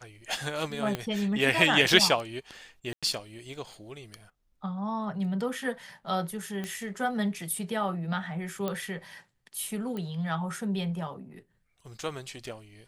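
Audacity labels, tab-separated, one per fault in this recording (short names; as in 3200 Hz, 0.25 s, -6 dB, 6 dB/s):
0.950000	0.950000	pop -16 dBFS
2.930000	3.030000	gap 96 ms
6.640000	6.640000	pop -21 dBFS
8.680000	8.680000	pop -17 dBFS
9.970000	9.970000	pop -24 dBFS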